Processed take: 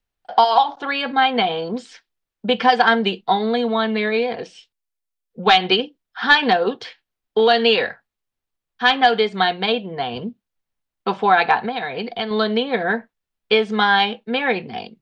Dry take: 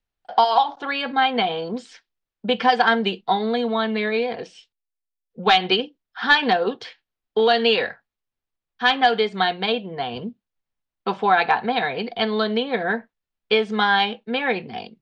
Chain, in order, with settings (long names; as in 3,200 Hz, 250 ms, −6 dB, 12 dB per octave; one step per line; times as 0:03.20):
0:11.58–0:12.31: downward compressor, threshold −24 dBFS, peak gain reduction 7.5 dB
level +2.5 dB